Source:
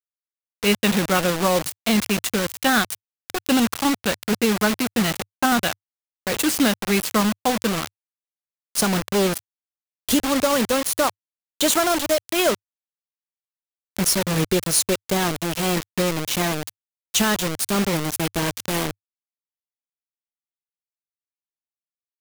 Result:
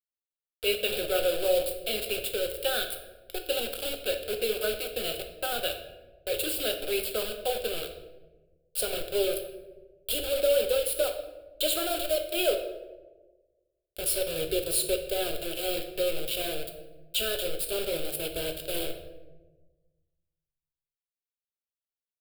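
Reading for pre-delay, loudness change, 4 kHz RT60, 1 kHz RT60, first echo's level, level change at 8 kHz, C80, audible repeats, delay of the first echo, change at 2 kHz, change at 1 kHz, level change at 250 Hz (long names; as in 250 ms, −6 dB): 4 ms, −8.0 dB, 0.65 s, 0.90 s, no echo audible, −10.0 dB, 11.0 dB, no echo audible, no echo audible, −11.0 dB, −15.0 dB, −18.5 dB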